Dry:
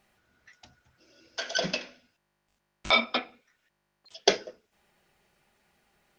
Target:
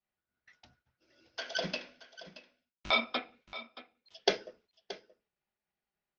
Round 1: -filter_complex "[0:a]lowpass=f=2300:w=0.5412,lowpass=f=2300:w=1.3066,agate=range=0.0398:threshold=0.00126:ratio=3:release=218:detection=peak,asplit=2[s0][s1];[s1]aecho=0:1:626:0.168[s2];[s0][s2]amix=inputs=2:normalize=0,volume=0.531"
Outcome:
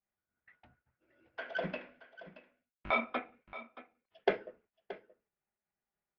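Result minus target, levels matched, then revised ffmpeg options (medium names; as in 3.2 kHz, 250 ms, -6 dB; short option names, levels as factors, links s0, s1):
4 kHz band -11.0 dB
-filter_complex "[0:a]lowpass=f=5400:w=0.5412,lowpass=f=5400:w=1.3066,agate=range=0.0398:threshold=0.00126:ratio=3:release=218:detection=peak,asplit=2[s0][s1];[s1]aecho=0:1:626:0.168[s2];[s0][s2]amix=inputs=2:normalize=0,volume=0.531"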